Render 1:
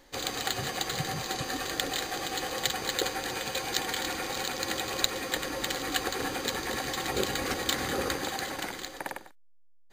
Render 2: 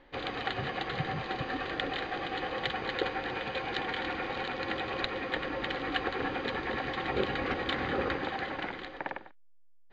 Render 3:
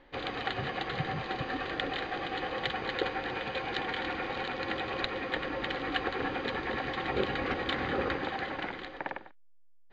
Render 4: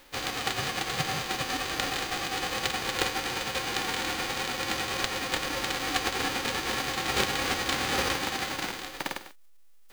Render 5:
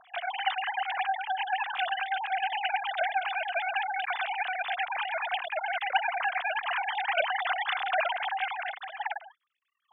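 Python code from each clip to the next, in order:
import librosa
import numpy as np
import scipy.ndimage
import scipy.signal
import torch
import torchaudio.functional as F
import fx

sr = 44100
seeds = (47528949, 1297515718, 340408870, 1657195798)

y1 = scipy.signal.sosfilt(scipy.signal.butter(4, 3100.0, 'lowpass', fs=sr, output='sos'), x)
y2 = y1
y3 = fx.envelope_flatten(y2, sr, power=0.3)
y3 = y3 * librosa.db_to_amplitude(3.5)
y4 = fx.sine_speech(y3, sr)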